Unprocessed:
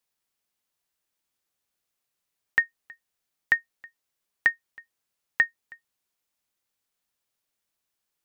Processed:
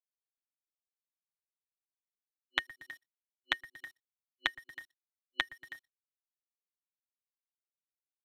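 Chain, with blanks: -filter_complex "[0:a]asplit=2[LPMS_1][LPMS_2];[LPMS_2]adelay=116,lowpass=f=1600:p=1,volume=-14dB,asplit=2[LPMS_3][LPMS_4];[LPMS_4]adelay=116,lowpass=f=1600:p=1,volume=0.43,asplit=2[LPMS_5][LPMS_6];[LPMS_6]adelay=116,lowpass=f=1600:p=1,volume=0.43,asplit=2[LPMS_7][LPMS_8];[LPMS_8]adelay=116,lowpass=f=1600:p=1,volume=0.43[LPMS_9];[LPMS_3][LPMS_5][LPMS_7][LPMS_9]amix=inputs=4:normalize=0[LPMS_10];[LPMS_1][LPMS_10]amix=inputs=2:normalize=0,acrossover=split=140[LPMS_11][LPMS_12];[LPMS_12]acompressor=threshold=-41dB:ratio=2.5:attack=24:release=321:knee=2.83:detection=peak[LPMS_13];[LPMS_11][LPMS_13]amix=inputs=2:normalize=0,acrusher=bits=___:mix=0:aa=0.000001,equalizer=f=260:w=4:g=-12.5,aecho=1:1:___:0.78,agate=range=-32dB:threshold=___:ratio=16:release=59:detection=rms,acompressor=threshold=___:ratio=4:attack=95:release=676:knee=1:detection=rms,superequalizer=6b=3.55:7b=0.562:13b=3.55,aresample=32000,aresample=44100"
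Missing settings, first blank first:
9, 7.4, -56dB, -34dB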